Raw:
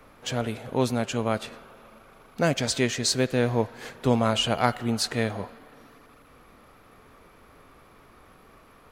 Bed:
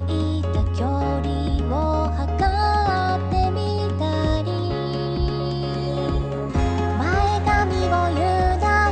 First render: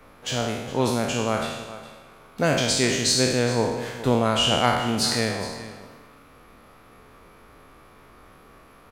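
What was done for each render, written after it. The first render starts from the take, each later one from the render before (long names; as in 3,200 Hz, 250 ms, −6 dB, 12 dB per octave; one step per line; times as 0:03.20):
peak hold with a decay on every bin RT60 1.05 s
single-tap delay 413 ms −15.5 dB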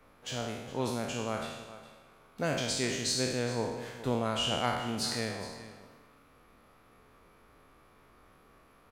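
level −10 dB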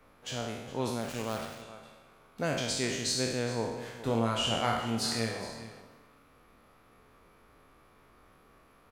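0:01.01–0:01.62: gap after every zero crossing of 0.19 ms
0:04.02–0:05.82: flutter between parallel walls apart 4.5 metres, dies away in 0.25 s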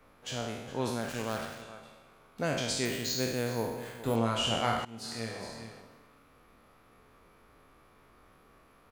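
0:00.68–0:01.80: parametric band 1,600 Hz +7.5 dB 0.22 octaves
0:02.85–0:04.16: bad sample-rate conversion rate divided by 4×, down filtered, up hold
0:04.85–0:05.64: fade in, from −19.5 dB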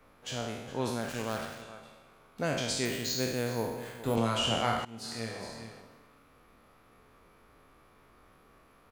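0:04.17–0:04.63: multiband upward and downward compressor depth 40%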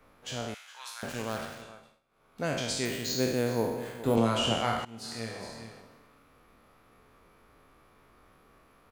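0:00.54–0:01.03: high-pass filter 1,200 Hz 24 dB per octave
0:01.65–0:02.45: duck −18.5 dB, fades 0.36 s
0:03.09–0:04.53: parametric band 330 Hz +5 dB 2.5 octaves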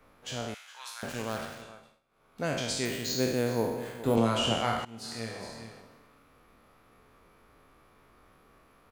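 no processing that can be heard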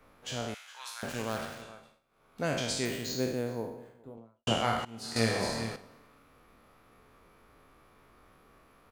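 0:02.59–0:04.47: fade out and dull
0:05.16–0:05.76: clip gain +10 dB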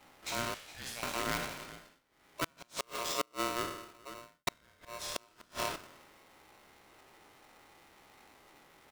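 gate with flip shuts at −20 dBFS, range −36 dB
ring modulator with a square carrier 820 Hz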